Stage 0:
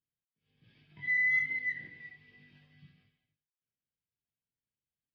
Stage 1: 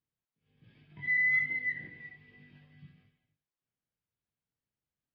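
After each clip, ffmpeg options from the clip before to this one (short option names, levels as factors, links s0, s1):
-af "lowpass=f=1700:p=1,volume=1.68"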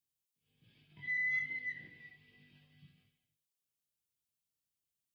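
-af "aexciter=amount=3.6:drive=4.1:freq=2600,volume=0.398"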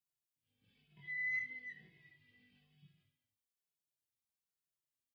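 -filter_complex "[0:a]asplit=2[s0][s1];[s1]adelay=2.3,afreqshift=-1.1[s2];[s0][s2]amix=inputs=2:normalize=1,volume=0.708"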